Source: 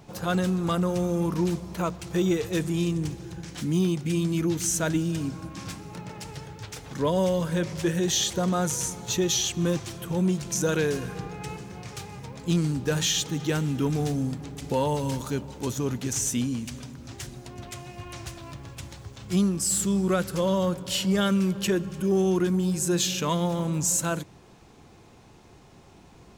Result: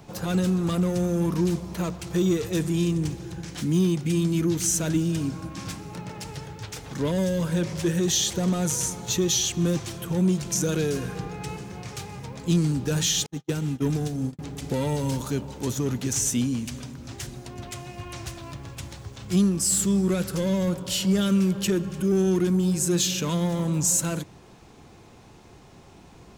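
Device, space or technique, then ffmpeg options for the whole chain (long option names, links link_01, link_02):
one-band saturation: -filter_complex "[0:a]acrossover=split=400|3500[link_01][link_02][link_03];[link_02]asoftclip=type=tanh:threshold=-35dB[link_04];[link_01][link_04][link_03]amix=inputs=3:normalize=0,asettb=1/sr,asplit=3[link_05][link_06][link_07];[link_05]atrim=end=13.264[link_08];[link_06]atrim=start=13.26:end=14.39,asetpts=PTS-STARTPTS,afade=type=in:duration=0.004:curve=qsin,afade=type=out:start_time=1.126:duration=0.004:curve=qsin,agate=range=-50dB:threshold=-26dB:ratio=16:detection=peak[link_09];[link_07]atrim=start=14.386[link_10];[link_08][link_09]acrossfade=duration=0.004:curve1=hsin:curve2=qsin[link_11];[link_11][link_10]acrossfade=duration=0.004:curve1=qsin:curve2=hsin,volume=2.5dB"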